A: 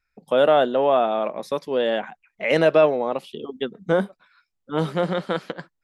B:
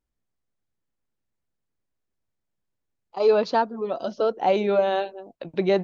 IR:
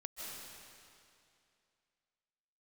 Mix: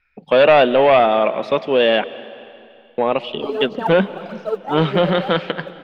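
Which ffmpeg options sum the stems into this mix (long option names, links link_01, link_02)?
-filter_complex "[0:a]aeval=exprs='0.562*(cos(1*acos(clip(val(0)/0.562,-1,1)))-cos(1*PI/2))+0.0891*(cos(5*acos(clip(val(0)/0.562,-1,1)))-cos(5*PI/2))':channel_layout=same,lowpass=frequency=2800:width_type=q:width=2.7,volume=1.5dB,asplit=3[link_01][link_02][link_03];[link_01]atrim=end=2.04,asetpts=PTS-STARTPTS,afade=type=out:start_time=2.036:duration=0.004:curve=hsin[link_04];[link_02]atrim=start=2.04:end=2.98,asetpts=PTS-STARTPTS,volume=0[link_05];[link_03]atrim=start=2.98,asetpts=PTS-STARTPTS,afade=type=in:duration=0.004:curve=hsin[link_06];[link_04][link_05][link_06]concat=n=3:v=0:a=1,asplit=3[link_07][link_08][link_09];[link_08]volume=-12.5dB[link_10];[1:a]acrossover=split=2600[link_11][link_12];[link_12]acompressor=threshold=-52dB:ratio=4:attack=1:release=60[link_13];[link_11][link_13]amix=inputs=2:normalize=0,aphaser=in_gain=1:out_gain=1:delay=4:decay=0.79:speed=1.7:type=triangular,adelay=250,volume=-7dB,asplit=2[link_14][link_15];[link_15]volume=-12dB[link_16];[link_09]apad=whole_len=268489[link_17];[link_14][link_17]sidechaincompress=threshold=-19dB:ratio=8:attack=16:release=333[link_18];[2:a]atrim=start_sample=2205[link_19];[link_10][link_16]amix=inputs=2:normalize=0[link_20];[link_20][link_19]afir=irnorm=-1:irlink=0[link_21];[link_07][link_18][link_21]amix=inputs=3:normalize=0"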